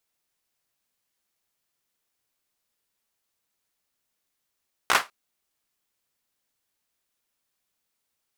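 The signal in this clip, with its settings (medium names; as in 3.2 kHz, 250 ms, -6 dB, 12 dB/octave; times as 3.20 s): hand clap length 0.20 s, bursts 4, apart 16 ms, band 1.2 kHz, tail 0.20 s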